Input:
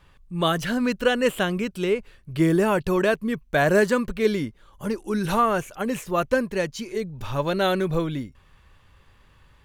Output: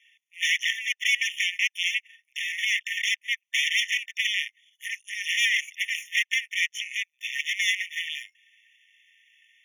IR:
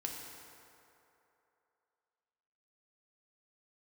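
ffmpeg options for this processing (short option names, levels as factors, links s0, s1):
-filter_complex "[0:a]aemphasis=mode=reproduction:type=cd,aeval=exprs='0.422*(cos(1*acos(clip(val(0)/0.422,-1,1)))-cos(1*PI/2))+0.168*(cos(8*acos(clip(val(0)/0.422,-1,1)))-cos(8*PI/2))':c=same,acrossover=split=580|6100[s0][s1][s2];[s2]acompressor=threshold=0.00447:ratio=20[s3];[s0][s1][s3]amix=inputs=3:normalize=0,alimiter=limit=0.398:level=0:latency=1:release=31,asplit=2[s4][s5];[s5]aeval=exprs='0.112*(abs(mod(val(0)/0.112+3,4)-2)-1)':c=same,volume=0.668[s6];[s4][s6]amix=inputs=2:normalize=0,afftfilt=real='re*eq(mod(floor(b*sr/1024/1800),2),1)':imag='im*eq(mod(floor(b*sr/1024/1800),2),1)':win_size=1024:overlap=0.75,volume=1.41"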